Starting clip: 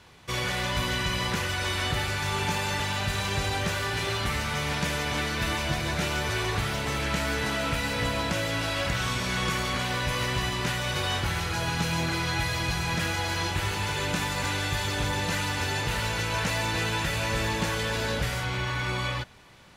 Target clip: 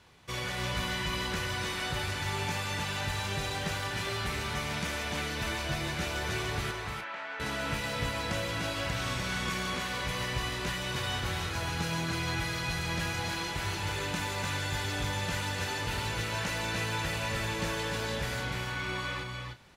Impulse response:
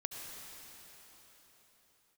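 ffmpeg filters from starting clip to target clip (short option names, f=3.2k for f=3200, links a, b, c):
-filter_complex "[0:a]asettb=1/sr,asplit=3[a][b][c];[a]atrim=end=6.714[d];[b]atrim=start=6.71:end=7.4,asetpts=PTS-STARTPTS,afade=t=in:d=0.004:c=qsin,afade=t=out:st=0.686:d=0.004:c=qsin,highpass=790,lowpass=2k[e];[c]atrim=start=7.396[f];[d][e]acrossfade=d=0.004:c1=hsin:c2=qsin[g];[g][f]acrossfade=d=0.004:c1=qsin:c2=hsin,aecho=1:1:297|330:0.562|0.178,volume=-6dB"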